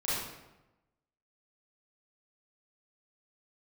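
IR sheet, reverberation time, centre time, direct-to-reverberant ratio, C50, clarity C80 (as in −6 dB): 1.0 s, 86 ms, −11.0 dB, −2.5 dB, 1.5 dB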